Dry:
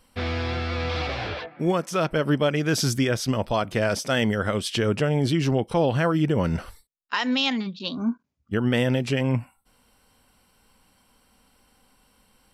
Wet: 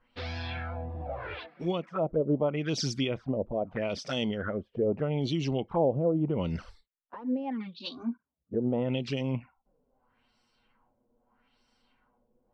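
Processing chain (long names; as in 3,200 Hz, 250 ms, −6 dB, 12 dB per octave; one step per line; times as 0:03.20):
high-shelf EQ 5,300 Hz −5.5 dB
flanger swept by the level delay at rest 8.6 ms, full sweep at −19 dBFS
parametric band 110 Hz −7.5 dB 0.26 octaves
auto-filter low-pass sine 0.79 Hz 470–5,500 Hz
level −6.5 dB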